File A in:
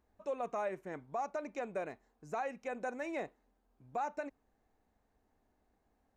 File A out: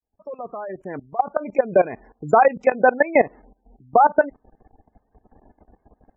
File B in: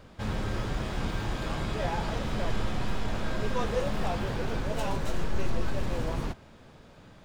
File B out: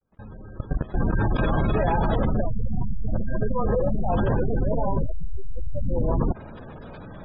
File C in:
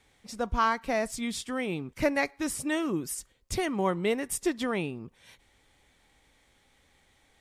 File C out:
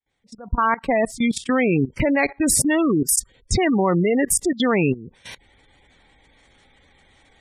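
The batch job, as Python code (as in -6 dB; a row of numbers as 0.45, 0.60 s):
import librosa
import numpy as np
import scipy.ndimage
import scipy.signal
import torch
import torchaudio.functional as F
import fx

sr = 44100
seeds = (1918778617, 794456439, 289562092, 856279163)

y = fx.fade_in_head(x, sr, length_s=1.86)
y = fx.spec_gate(y, sr, threshold_db=-20, keep='strong')
y = fx.level_steps(y, sr, step_db=19)
y = y * 10.0 ** (-22 / 20.0) / np.sqrt(np.mean(np.square(y)))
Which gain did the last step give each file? +26.0, +17.5, +20.0 dB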